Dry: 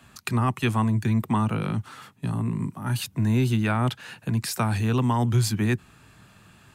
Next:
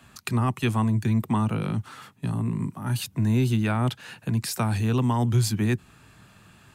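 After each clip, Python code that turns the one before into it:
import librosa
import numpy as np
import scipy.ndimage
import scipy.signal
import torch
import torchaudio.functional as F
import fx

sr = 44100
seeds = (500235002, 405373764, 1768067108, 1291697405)

y = fx.dynamic_eq(x, sr, hz=1500.0, q=0.72, threshold_db=-39.0, ratio=4.0, max_db=-3)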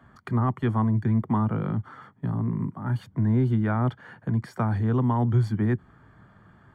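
y = scipy.signal.savgol_filter(x, 41, 4, mode='constant')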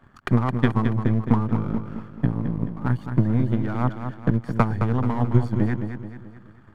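y = np.where(x < 0.0, 10.0 ** (-7.0 / 20.0) * x, x)
y = fx.transient(y, sr, attack_db=12, sustain_db=-3)
y = fx.echo_feedback(y, sr, ms=216, feedback_pct=46, wet_db=-8.0)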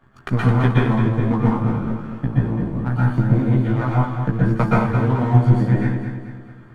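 y = fx.doubler(x, sr, ms=15.0, db=-5)
y = fx.rev_plate(y, sr, seeds[0], rt60_s=0.55, hf_ratio=0.95, predelay_ms=110, drr_db=-5.5)
y = y * librosa.db_to_amplitude(-2.5)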